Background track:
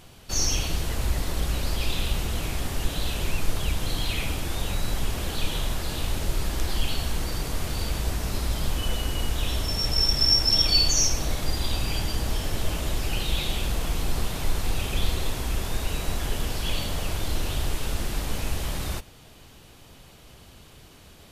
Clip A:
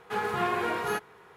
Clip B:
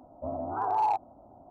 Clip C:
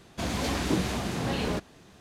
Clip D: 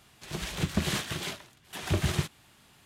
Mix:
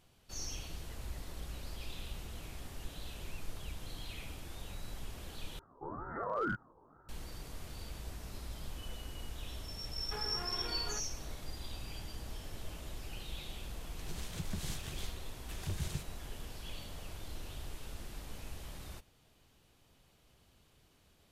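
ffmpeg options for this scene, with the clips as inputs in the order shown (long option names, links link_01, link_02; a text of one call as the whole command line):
ffmpeg -i bed.wav -i cue0.wav -i cue1.wav -i cue2.wav -i cue3.wav -filter_complex "[0:a]volume=-17.5dB[link_01];[2:a]aeval=exprs='val(0)*sin(2*PI*440*n/s+440*0.5/2.1*sin(2*PI*2.1*n/s))':channel_layout=same[link_02];[1:a]acompressor=threshold=-35dB:ratio=4:attack=32:release=622:knee=1:detection=peak[link_03];[4:a]acrossover=split=160|4200[link_04][link_05][link_06];[link_05]acompressor=threshold=-54dB:ratio=2:attack=73:release=137:knee=2.83:detection=peak[link_07];[link_04][link_07][link_06]amix=inputs=3:normalize=0[link_08];[link_01]asplit=2[link_09][link_10];[link_09]atrim=end=5.594[link_11];[link_02]atrim=end=1.5,asetpts=PTS-STARTPTS,volume=-6dB[link_12];[link_10]atrim=start=7.086[link_13];[link_03]atrim=end=1.36,asetpts=PTS-STARTPTS,volume=-8.5dB,afade=type=in:duration=0.004:curve=hsin,afade=type=out:start_time=1.356:duration=0.004:curve=hsin,adelay=10010[link_14];[link_08]atrim=end=2.85,asetpts=PTS-STARTPTS,volume=-8.5dB,afade=type=in:duration=0.004:curve=hsin,afade=type=out:start_time=2.846:duration=0.004:curve=hsin,adelay=13760[link_15];[link_11][link_12]acrossfade=duration=0.004:curve1=hsin:curve2=hsin[link_16];[link_16][link_13]acrossfade=duration=0.004:curve1=hsin:curve2=hsin[link_17];[link_17][link_14][link_15]amix=inputs=3:normalize=0" out.wav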